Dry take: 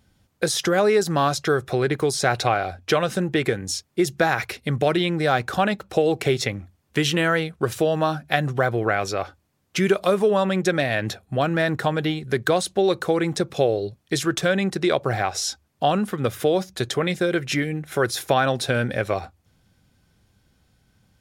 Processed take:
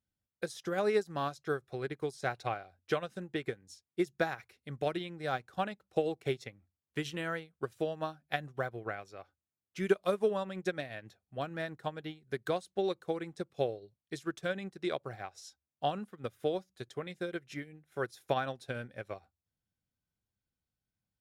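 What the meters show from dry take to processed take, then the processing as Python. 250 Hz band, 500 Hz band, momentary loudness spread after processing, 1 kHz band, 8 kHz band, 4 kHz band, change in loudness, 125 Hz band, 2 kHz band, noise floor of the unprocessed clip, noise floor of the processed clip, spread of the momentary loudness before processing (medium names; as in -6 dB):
-15.0 dB, -13.0 dB, 12 LU, -14.0 dB, -23.5 dB, -17.5 dB, -14.0 dB, -17.0 dB, -15.0 dB, -66 dBFS, under -85 dBFS, 7 LU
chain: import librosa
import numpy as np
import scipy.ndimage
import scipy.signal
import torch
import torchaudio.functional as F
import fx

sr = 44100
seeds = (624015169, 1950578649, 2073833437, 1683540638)

y = fx.upward_expand(x, sr, threshold_db=-29.0, expansion=2.5)
y = F.gain(torch.from_numpy(y), -7.0).numpy()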